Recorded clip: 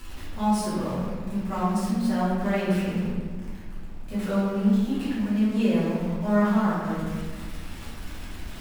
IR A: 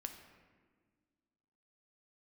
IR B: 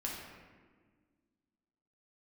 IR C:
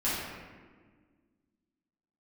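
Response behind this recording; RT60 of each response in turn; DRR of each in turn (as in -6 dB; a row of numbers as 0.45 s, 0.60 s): C; 1.6 s, 1.6 s, 1.6 s; 5.5 dB, -3.5 dB, -11.0 dB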